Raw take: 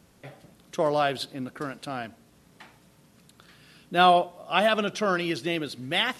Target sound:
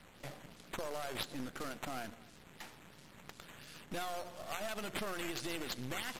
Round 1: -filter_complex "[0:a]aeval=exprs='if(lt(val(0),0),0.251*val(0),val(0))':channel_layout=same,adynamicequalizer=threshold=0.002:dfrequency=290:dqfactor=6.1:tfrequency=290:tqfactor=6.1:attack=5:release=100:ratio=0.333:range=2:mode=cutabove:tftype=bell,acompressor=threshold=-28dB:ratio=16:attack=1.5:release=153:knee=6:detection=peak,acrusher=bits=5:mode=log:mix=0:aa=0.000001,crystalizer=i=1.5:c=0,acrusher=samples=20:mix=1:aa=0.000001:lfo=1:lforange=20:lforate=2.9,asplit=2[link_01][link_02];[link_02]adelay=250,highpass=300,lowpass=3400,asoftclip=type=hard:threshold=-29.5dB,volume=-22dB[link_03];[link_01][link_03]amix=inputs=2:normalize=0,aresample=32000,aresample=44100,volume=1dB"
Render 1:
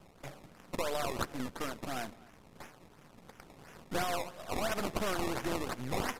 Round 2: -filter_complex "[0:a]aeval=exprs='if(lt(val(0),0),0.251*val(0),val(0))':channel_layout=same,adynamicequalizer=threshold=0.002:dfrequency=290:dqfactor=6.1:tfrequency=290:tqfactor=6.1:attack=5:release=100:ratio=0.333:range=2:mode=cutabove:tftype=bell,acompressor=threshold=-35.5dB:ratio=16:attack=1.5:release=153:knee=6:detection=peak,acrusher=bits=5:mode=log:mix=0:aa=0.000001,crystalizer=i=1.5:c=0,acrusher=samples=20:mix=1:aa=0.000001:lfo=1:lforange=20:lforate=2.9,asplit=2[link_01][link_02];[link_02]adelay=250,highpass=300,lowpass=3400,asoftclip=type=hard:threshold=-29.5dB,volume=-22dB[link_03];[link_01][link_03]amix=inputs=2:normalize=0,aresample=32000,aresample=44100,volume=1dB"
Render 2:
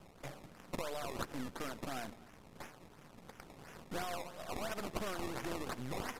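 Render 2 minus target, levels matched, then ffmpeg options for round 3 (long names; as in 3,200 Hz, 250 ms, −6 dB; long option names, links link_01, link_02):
sample-and-hold swept by an LFO: distortion +6 dB
-filter_complex "[0:a]aeval=exprs='if(lt(val(0),0),0.251*val(0),val(0))':channel_layout=same,adynamicequalizer=threshold=0.002:dfrequency=290:dqfactor=6.1:tfrequency=290:tqfactor=6.1:attack=5:release=100:ratio=0.333:range=2:mode=cutabove:tftype=bell,acompressor=threshold=-35.5dB:ratio=16:attack=1.5:release=153:knee=6:detection=peak,acrusher=bits=5:mode=log:mix=0:aa=0.000001,crystalizer=i=1.5:c=0,acrusher=samples=6:mix=1:aa=0.000001:lfo=1:lforange=6:lforate=2.9,asplit=2[link_01][link_02];[link_02]adelay=250,highpass=300,lowpass=3400,asoftclip=type=hard:threshold=-29.5dB,volume=-22dB[link_03];[link_01][link_03]amix=inputs=2:normalize=0,aresample=32000,aresample=44100,volume=1dB"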